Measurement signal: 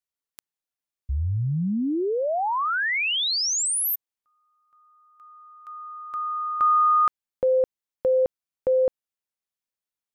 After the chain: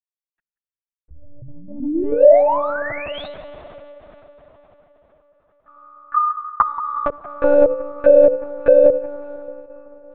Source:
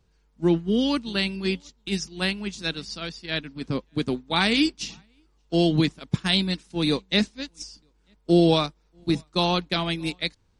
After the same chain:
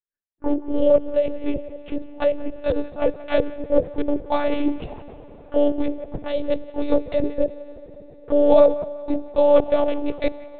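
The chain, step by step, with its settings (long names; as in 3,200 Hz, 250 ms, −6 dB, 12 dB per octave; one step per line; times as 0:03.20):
adaptive Wiener filter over 41 samples
high-pass filter 51 Hz 6 dB per octave
mains-hum notches 60/120/180/240/300/360/420/480 Hz
downward expander −52 dBFS
dynamic equaliser 220 Hz, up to +5 dB, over −41 dBFS, Q 3.5
reversed playback
downward compressor 5 to 1, threshold −36 dBFS
reversed playback
envelope filter 570–1,800 Hz, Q 6.1, down, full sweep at −37.5 dBFS
on a send: delay with a band-pass on its return 177 ms, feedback 39%, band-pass 1,500 Hz, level −14.5 dB
on the sum: dense smooth reverb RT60 4.9 s, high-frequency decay 0.7×, DRR 15.5 dB
one-pitch LPC vocoder at 8 kHz 290 Hz
boost into a limiter +35 dB
level −1 dB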